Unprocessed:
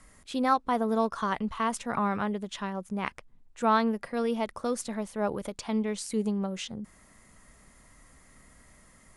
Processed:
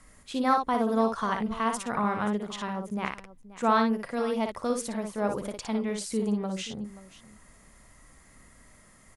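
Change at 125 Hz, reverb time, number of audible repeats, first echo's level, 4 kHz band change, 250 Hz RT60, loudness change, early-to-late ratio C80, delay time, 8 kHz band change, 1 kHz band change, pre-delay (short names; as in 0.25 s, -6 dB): +1.0 dB, none, 2, -5.5 dB, +1.0 dB, none, +1.0 dB, none, 58 ms, +1.0 dB, +1.0 dB, none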